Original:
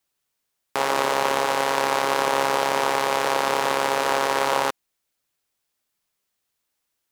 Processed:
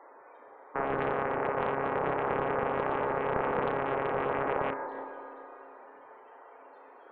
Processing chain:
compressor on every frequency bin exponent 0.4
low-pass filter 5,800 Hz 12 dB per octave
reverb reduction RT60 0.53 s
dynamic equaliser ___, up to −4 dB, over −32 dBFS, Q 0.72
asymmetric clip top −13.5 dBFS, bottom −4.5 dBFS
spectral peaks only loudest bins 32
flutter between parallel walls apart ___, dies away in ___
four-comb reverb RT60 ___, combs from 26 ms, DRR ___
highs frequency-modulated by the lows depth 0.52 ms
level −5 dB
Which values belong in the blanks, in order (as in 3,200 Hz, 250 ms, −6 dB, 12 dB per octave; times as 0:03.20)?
1,100 Hz, 6.2 metres, 0.31 s, 3 s, 2 dB